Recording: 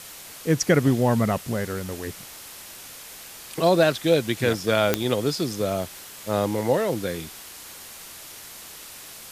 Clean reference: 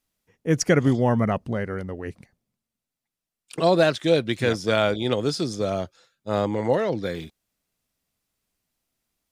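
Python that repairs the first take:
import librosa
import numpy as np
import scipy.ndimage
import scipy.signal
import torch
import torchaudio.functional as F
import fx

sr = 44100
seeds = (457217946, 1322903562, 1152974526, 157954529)

y = fx.fix_declick_ar(x, sr, threshold=10.0)
y = fx.noise_reduce(y, sr, print_start_s=8.72, print_end_s=9.22, reduce_db=30.0)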